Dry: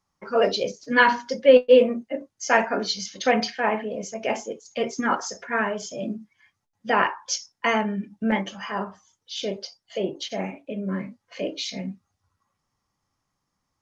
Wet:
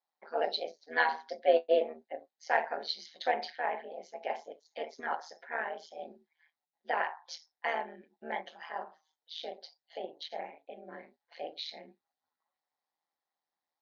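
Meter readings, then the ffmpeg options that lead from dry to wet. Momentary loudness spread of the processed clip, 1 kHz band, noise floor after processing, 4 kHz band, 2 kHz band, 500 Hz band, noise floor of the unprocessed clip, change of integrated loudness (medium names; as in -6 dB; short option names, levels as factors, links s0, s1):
18 LU, -8.5 dB, under -85 dBFS, -10.5 dB, -10.5 dB, -12.0 dB, -79 dBFS, -11.0 dB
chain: -af "tremolo=f=160:d=0.857,highpass=490,equalizer=f=540:t=q:w=4:g=3,equalizer=f=770:t=q:w=4:g=9,equalizer=f=1200:t=q:w=4:g=-7,equalizer=f=1800:t=q:w=4:g=4,equalizer=f=2700:t=q:w=4:g=-5,equalizer=f=4000:t=q:w=4:g=8,lowpass=f=4500:w=0.5412,lowpass=f=4500:w=1.3066,volume=0.376"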